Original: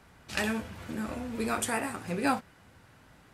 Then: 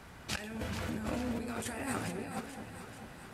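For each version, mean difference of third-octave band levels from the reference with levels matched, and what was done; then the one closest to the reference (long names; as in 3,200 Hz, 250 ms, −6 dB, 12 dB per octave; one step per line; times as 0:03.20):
9.5 dB: dynamic equaliser 1,100 Hz, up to −5 dB, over −46 dBFS, Q 2.6
compressor whose output falls as the input rises −39 dBFS, ratio −1
delay that swaps between a low-pass and a high-pass 218 ms, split 850 Hz, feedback 76%, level −7 dB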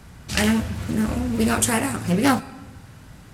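3.0 dB: bass and treble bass +10 dB, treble +7 dB
comb and all-pass reverb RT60 1.2 s, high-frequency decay 0.75×, pre-delay 65 ms, DRR 19 dB
highs frequency-modulated by the lows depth 0.27 ms
level +7 dB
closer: second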